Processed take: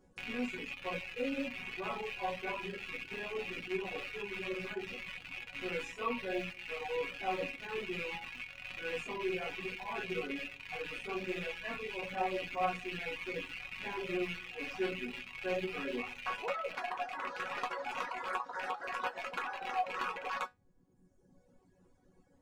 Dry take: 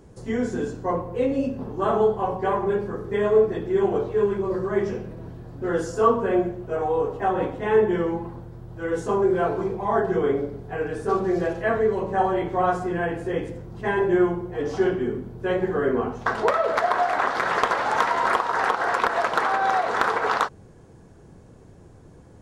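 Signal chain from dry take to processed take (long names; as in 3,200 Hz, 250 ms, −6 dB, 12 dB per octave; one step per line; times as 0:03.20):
loose part that buzzes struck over −38 dBFS, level −12 dBFS
resonators tuned to a chord F#3 sus4, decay 0.21 s
reverb reduction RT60 1.2 s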